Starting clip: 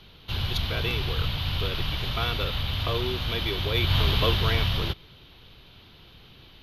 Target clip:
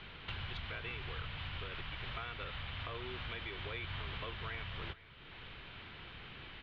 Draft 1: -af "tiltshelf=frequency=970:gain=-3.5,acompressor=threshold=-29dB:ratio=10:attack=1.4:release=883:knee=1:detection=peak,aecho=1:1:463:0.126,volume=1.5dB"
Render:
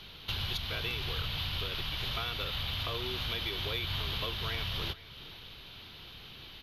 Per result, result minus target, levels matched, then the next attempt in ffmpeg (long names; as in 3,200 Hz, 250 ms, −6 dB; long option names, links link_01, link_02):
downward compressor: peak gain reduction −6.5 dB; 2,000 Hz band −5.5 dB
-af "tiltshelf=frequency=970:gain=-3.5,acompressor=threshold=-37.5dB:ratio=10:attack=1.4:release=883:knee=1:detection=peak,aecho=1:1:463:0.126,volume=1.5dB"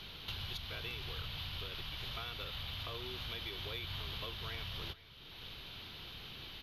2,000 Hz band −4.5 dB
-af "lowpass=frequency=2000:width_type=q:width=1.7,tiltshelf=frequency=970:gain=-3.5,acompressor=threshold=-37.5dB:ratio=10:attack=1.4:release=883:knee=1:detection=peak,aecho=1:1:463:0.126,volume=1.5dB"